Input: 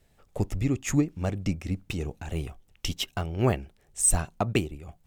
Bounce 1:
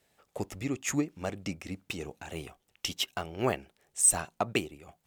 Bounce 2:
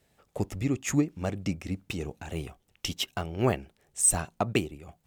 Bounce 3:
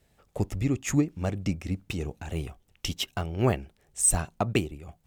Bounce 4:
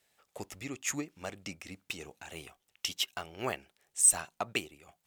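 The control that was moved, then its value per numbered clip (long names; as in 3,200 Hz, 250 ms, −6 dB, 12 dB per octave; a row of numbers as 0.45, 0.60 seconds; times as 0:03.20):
high-pass filter, corner frequency: 450, 140, 42, 1,400 Hertz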